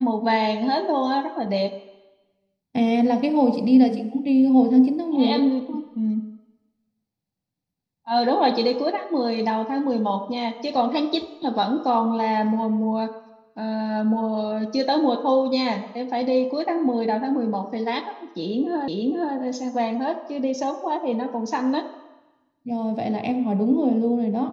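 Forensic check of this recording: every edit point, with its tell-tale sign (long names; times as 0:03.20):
0:18.88: the same again, the last 0.48 s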